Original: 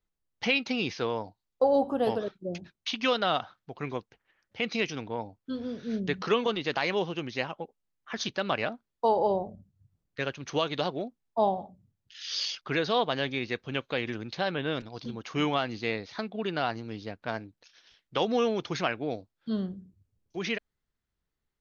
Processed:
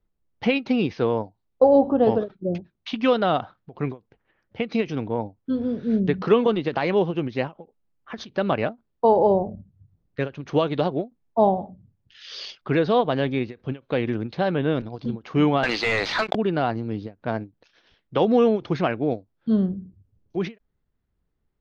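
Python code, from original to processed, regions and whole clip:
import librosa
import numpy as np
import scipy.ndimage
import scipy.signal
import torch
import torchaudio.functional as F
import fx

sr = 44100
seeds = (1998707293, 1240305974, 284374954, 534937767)

y = fx.chain(x, sr, fx.highpass(hz=1200.0, slope=12),
    fx.leveller(passes=5),
    fx.env_flatten(amount_pct=70), at=(15.63, 16.35))
y = scipy.signal.sosfilt(scipy.signal.butter(2, 4200.0, 'lowpass', fs=sr, output='sos'), y)
y = fx.tilt_shelf(y, sr, db=6.5, hz=970.0)
y = fx.end_taper(y, sr, db_per_s=310.0)
y = y * librosa.db_to_amplitude(4.5)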